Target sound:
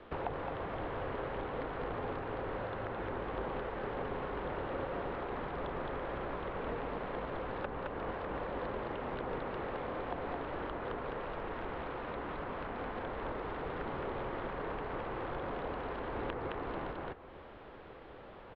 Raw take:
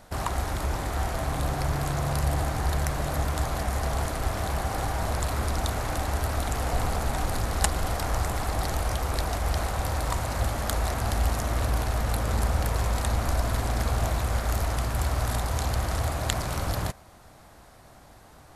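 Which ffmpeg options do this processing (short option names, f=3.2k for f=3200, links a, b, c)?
-filter_complex "[0:a]asplit=2[a][b];[b]aecho=0:1:216:0.708[c];[a][c]amix=inputs=2:normalize=0,acrossover=split=990|2100[d][e][f];[d]acompressor=threshold=-34dB:ratio=4[g];[e]acompressor=threshold=-45dB:ratio=4[h];[f]acompressor=threshold=-52dB:ratio=4[i];[g][h][i]amix=inputs=3:normalize=0,highpass=f=190:t=q:w=0.5412,highpass=f=190:t=q:w=1.307,lowpass=f=3.4k:t=q:w=0.5176,lowpass=f=3.4k:t=q:w=0.7071,lowpass=f=3.4k:t=q:w=1.932,afreqshift=-250,volume=1dB"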